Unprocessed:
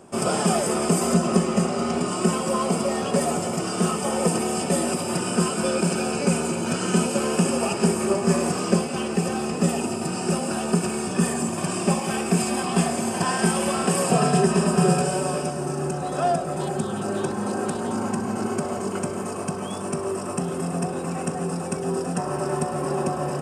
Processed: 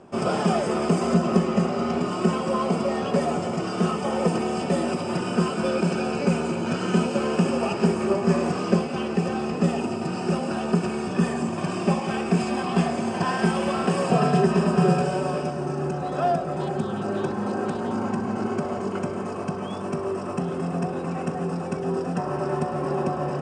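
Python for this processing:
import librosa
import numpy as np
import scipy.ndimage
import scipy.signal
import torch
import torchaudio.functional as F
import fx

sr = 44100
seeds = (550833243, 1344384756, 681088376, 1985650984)

y = fx.air_absorb(x, sr, metres=130.0)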